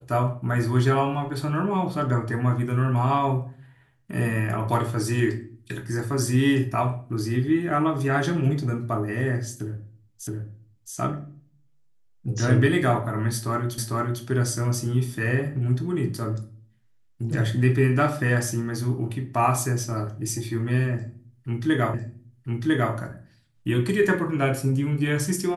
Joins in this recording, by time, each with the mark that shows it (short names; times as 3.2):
10.27 repeat of the last 0.67 s
13.78 repeat of the last 0.45 s
21.94 repeat of the last 1 s